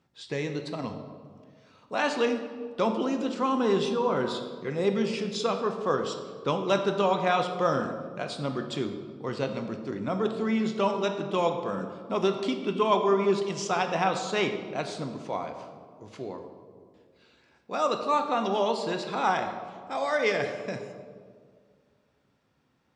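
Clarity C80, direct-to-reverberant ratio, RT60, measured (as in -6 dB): 9.0 dB, 5.0 dB, 1.9 s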